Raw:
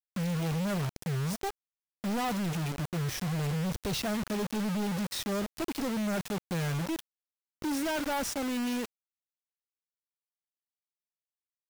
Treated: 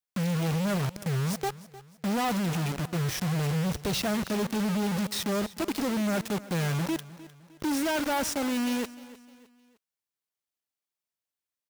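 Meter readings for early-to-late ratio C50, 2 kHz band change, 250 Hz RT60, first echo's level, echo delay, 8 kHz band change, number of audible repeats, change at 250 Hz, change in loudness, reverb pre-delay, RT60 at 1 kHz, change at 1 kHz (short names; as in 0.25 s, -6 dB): none, +3.5 dB, none, -18.0 dB, 0.306 s, +3.5 dB, 3, +3.5 dB, +3.5 dB, none, none, +3.5 dB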